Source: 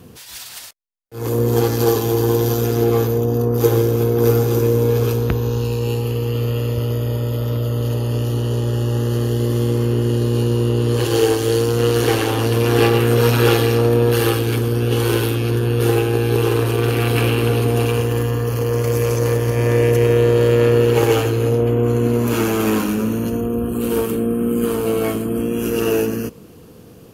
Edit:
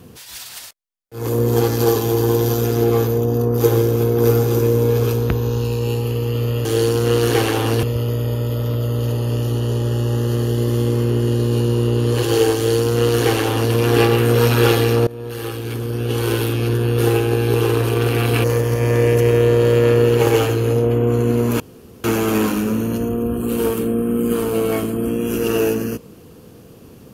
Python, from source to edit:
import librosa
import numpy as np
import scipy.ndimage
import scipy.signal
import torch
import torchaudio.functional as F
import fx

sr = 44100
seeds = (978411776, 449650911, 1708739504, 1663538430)

y = fx.edit(x, sr, fx.duplicate(start_s=11.38, length_s=1.18, to_s=6.65),
    fx.fade_in_from(start_s=13.89, length_s=1.55, floor_db=-21.0),
    fx.cut(start_s=17.26, length_s=1.94),
    fx.insert_room_tone(at_s=22.36, length_s=0.44), tone=tone)